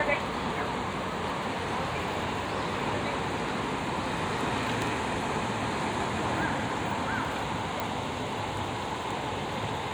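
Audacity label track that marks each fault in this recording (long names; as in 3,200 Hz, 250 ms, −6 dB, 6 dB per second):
7.800000	7.800000	click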